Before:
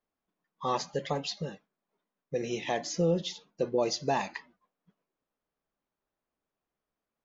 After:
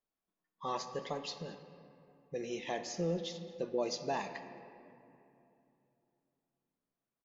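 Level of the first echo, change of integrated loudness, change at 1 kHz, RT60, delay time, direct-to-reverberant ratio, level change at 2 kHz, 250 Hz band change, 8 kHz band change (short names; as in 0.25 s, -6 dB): -22.0 dB, -7.0 dB, -6.5 dB, 2.8 s, 0.22 s, 8.5 dB, -6.5 dB, -6.5 dB, n/a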